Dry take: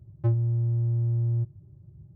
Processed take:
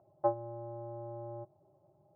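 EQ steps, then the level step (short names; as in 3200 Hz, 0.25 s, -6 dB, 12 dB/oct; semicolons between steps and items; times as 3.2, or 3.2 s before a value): resonant high-pass 690 Hz, resonance Q 4.9; LPF 1200 Hz 24 dB/oct; +6.0 dB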